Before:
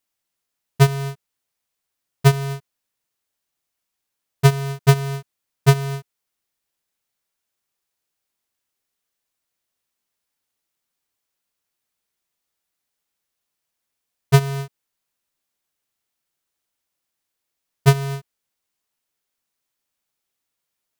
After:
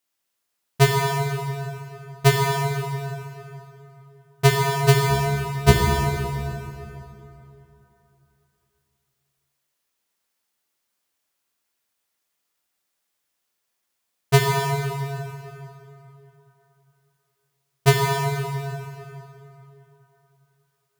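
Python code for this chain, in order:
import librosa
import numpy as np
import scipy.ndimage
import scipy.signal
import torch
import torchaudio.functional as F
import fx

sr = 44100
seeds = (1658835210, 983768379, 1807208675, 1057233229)

y = fx.octave_divider(x, sr, octaves=1, level_db=-1.0, at=(5.09, 5.72))
y = fx.low_shelf(y, sr, hz=190.0, db=-7.0)
y = fx.rev_plate(y, sr, seeds[0], rt60_s=3.2, hf_ratio=0.7, predelay_ms=0, drr_db=-2.0)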